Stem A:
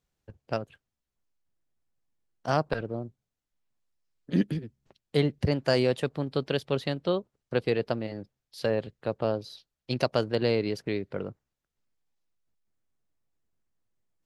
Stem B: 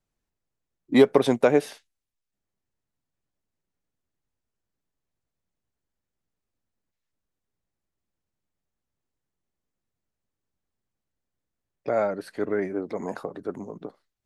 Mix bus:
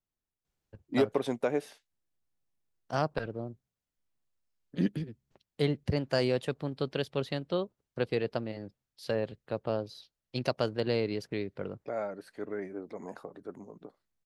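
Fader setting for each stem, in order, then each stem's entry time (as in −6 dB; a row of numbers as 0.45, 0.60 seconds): −4.0, −10.5 decibels; 0.45, 0.00 seconds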